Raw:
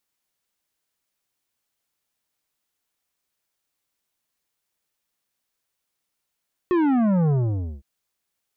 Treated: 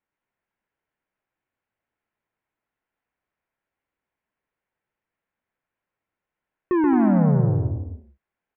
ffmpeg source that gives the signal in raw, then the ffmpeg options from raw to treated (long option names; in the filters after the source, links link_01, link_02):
-f lavfi -i "aevalsrc='0.126*clip((1.11-t)/0.52,0,1)*tanh(3.55*sin(2*PI*370*1.11/log(65/370)*(exp(log(65/370)*t/1.11)-1)))/tanh(3.55)':duration=1.11:sample_rate=44100"
-filter_complex "[0:a]lowpass=frequency=2200:width=0.5412,lowpass=frequency=2200:width=1.3066,bandreject=frequency=1200:width=13,asplit=2[link_01][link_02];[link_02]aecho=0:1:130|221|284.7|329.3|360.5:0.631|0.398|0.251|0.158|0.1[link_03];[link_01][link_03]amix=inputs=2:normalize=0"